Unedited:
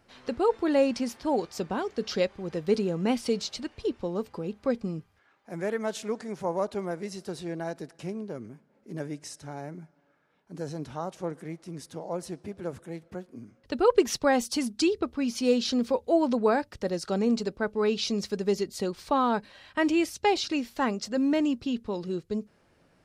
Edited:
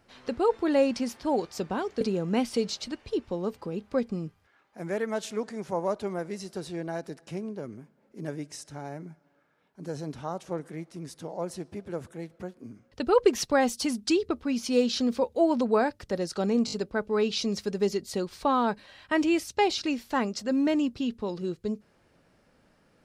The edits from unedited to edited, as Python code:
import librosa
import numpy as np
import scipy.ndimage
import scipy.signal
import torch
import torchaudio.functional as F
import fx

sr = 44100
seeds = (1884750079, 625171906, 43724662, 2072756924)

y = fx.edit(x, sr, fx.cut(start_s=2.01, length_s=0.72),
    fx.stutter(start_s=17.38, slice_s=0.02, count=4), tone=tone)